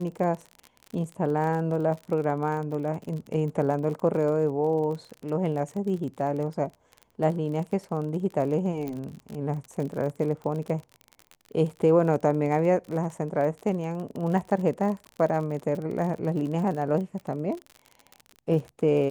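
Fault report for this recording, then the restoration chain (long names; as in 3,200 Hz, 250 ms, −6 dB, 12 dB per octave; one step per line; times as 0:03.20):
surface crackle 41 per second −33 dBFS
0:08.88: click −21 dBFS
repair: click removal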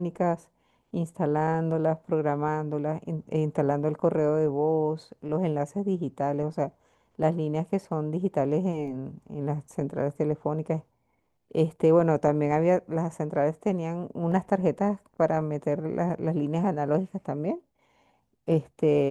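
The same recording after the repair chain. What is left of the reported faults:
0:08.88: click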